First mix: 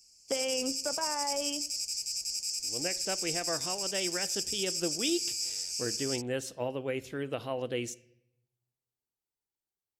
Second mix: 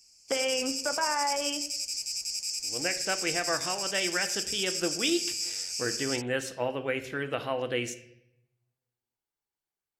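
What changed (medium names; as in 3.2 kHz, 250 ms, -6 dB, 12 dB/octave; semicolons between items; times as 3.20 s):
speech: send +8.5 dB; master: add peaking EQ 1.6 kHz +8.5 dB 1.8 oct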